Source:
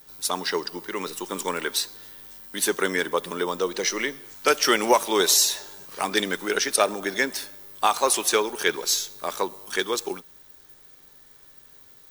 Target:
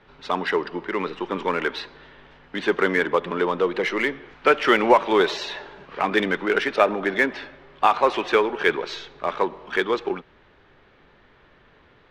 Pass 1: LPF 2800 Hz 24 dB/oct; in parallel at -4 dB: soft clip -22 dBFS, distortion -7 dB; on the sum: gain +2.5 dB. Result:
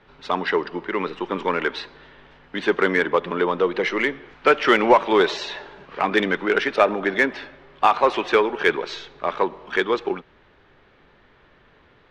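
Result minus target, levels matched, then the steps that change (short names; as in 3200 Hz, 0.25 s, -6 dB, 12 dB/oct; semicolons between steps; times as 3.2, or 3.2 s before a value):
soft clip: distortion -5 dB
change: soft clip -30.5 dBFS, distortion -3 dB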